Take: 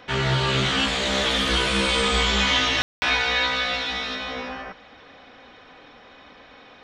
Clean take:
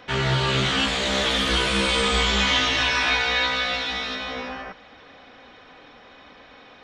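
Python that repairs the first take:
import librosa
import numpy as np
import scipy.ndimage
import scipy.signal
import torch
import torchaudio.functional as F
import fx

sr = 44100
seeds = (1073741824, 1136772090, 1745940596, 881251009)

y = fx.fix_ambience(x, sr, seeds[0], print_start_s=6.31, print_end_s=6.81, start_s=2.82, end_s=3.02)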